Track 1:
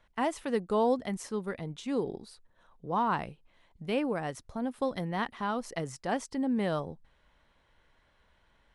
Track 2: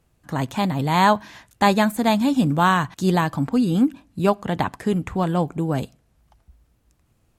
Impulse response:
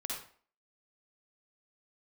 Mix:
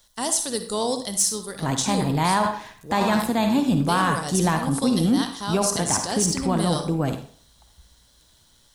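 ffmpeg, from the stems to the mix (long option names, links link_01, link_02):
-filter_complex "[0:a]aexciter=amount=11.5:drive=7.5:freq=3700,asoftclip=type=tanh:threshold=-11dB,volume=-1dB,asplit=2[link_01][link_02];[link_02]volume=-4.5dB[link_03];[1:a]adelay=1300,volume=-3dB,asplit=2[link_04][link_05];[link_05]volume=-4dB[link_06];[2:a]atrim=start_sample=2205[link_07];[link_03][link_06]amix=inputs=2:normalize=0[link_08];[link_08][link_07]afir=irnorm=-1:irlink=0[link_09];[link_01][link_04][link_09]amix=inputs=3:normalize=0,tremolo=f=120:d=0.261,alimiter=limit=-11.5dB:level=0:latency=1:release=20"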